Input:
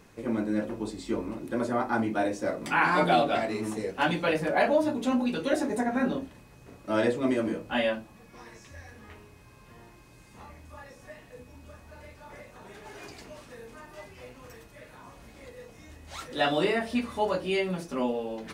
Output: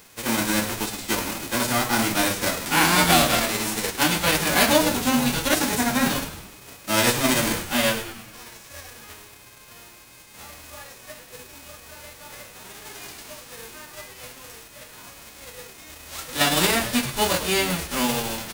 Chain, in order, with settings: spectral whitening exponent 0.3; on a send: frequency-shifting echo 0.103 s, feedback 54%, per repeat -110 Hz, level -11.5 dB; on the sum: gain +5 dB

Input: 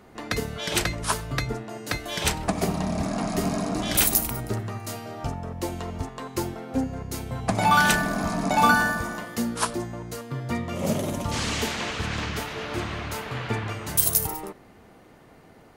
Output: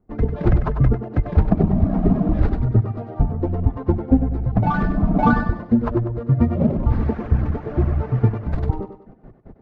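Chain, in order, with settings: median filter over 15 samples; notch 990 Hz, Q 20; gate with hold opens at -42 dBFS; notches 50/100/150 Hz; reverb removal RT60 1.3 s; tilt -4.5 dB/oct; AGC gain up to 6 dB; time stretch by phase-locked vocoder 0.61×; air absorption 160 m; thinning echo 97 ms, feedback 41%, high-pass 210 Hz, level -8 dB

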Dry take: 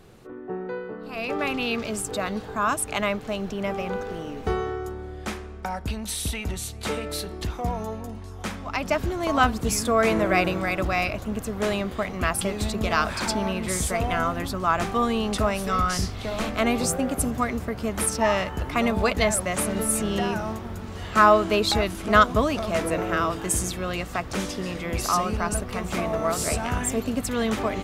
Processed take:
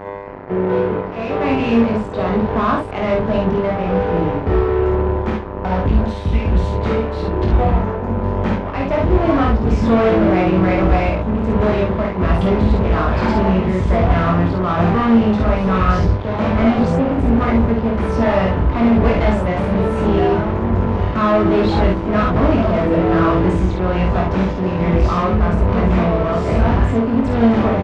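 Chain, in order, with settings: HPF 47 Hz 12 dB/oct; low shelf 170 Hz +9 dB; notches 50/100/150/200 Hz; buzz 100 Hz, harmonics 10, -40 dBFS 0 dB/oct; tremolo 1.2 Hz, depth 47%; fuzz box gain 30 dB, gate -36 dBFS; tape spacing loss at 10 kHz 42 dB; on a send: early reflections 22 ms -3.5 dB, 52 ms -3.5 dB, 70 ms -4 dB

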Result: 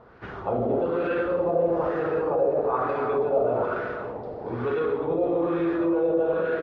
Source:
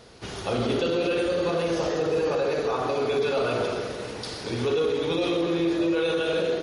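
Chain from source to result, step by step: speakerphone echo 0.25 s, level -6 dB; LFO low-pass sine 1.1 Hz 670–1600 Hz; gain -2.5 dB

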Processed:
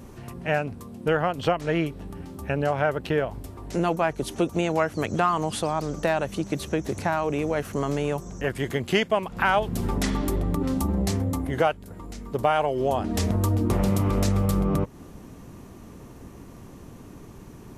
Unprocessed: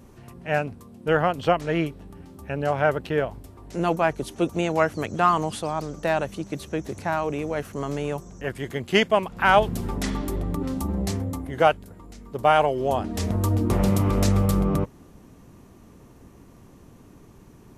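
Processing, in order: compressor 2.5:1, threshold -28 dBFS, peak gain reduction 11 dB; gain +5.5 dB

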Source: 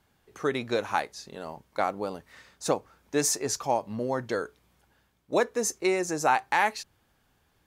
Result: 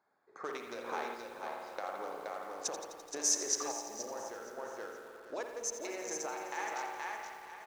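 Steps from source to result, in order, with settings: Wiener smoothing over 15 samples; high shelf 3600 Hz -9.5 dB; limiter -19 dBFS, peak gain reduction 7 dB; feedback echo 0.473 s, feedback 19%, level -7 dB; compressor 6:1, threshold -34 dBFS, peak gain reduction 11.5 dB; Bessel high-pass 690 Hz, order 2; bell 6000 Hz +14 dB 0.54 oct; spring tank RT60 1.7 s, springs 51 ms, chirp 40 ms, DRR 1 dB; random-step tremolo; lo-fi delay 85 ms, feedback 80%, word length 9-bit, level -12 dB; gain +2 dB

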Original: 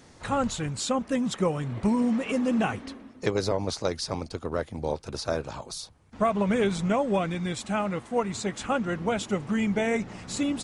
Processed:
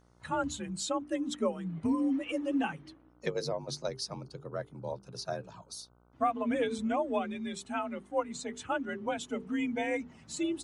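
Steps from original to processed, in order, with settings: per-bin expansion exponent 1.5; notches 50/100/150/200/250/300/350/400 Hz; frequency shift +46 Hz; buzz 60 Hz, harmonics 25, -62 dBFS -4 dB/oct; gain -3 dB

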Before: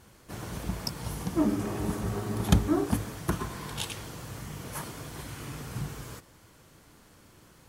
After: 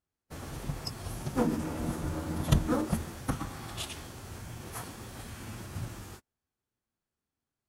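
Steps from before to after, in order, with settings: formant-preserving pitch shift -4.5 st; gate -43 dBFS, range -31 dB; gain -2 dB

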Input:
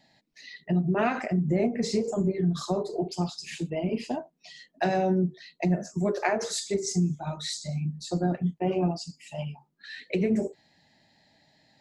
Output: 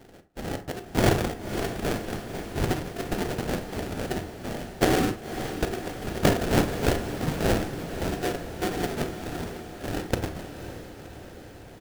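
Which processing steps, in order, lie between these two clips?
steep high-pass 800 Hz 48 dB/oct; comb 4.2 ms, depth 84%; in parallel at -2.5 dB: compressor, threshold -47 dBFS, peak gain reduction 23 dB; on the sum: sample-rate reducer 1100 Hz, jitter 20%; diffused feedback echo 0.53 s, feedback 64%, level -10.5 dB; on a send at -9 dB: reverb RT60 0.35 s, pre-delay 27 ms; on the sum: gain +7 dB

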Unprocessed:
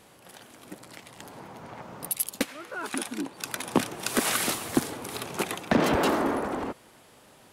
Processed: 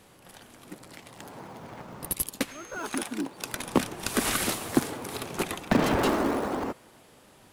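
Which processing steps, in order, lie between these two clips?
in parallel at -9 dB: decimation with a swept rate 35×, swing 160% 0.56 Hz; 2.5–2.97 on the sum: whine 6400 Hz -47 dBFS; gain -1.5 dB

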